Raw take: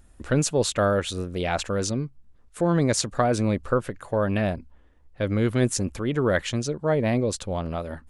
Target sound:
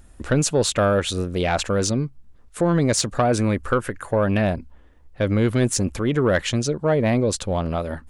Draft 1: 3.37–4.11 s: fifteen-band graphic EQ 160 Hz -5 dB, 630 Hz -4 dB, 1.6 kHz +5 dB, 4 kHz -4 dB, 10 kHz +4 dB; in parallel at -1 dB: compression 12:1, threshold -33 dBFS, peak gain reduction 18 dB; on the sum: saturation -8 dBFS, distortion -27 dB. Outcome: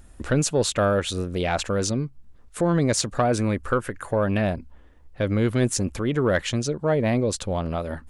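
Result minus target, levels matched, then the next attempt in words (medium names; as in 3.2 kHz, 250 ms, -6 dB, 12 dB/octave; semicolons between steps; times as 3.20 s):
compression: peak gain reduction +11 dB
3.37–4.11 s: fifteen-band graphic EQ 160 Hz -5 dB, 630 Hz -4 dB, 1.6 kHz +5 dB, 4 kHz -4 dB, 10 kHz +4 dB; in parallel at -1 dB: compression 12:1, threshold -21 dBFS, peak gain reduction 7 dB; on the sum: saturation -8 dBFS, distortion -23 dB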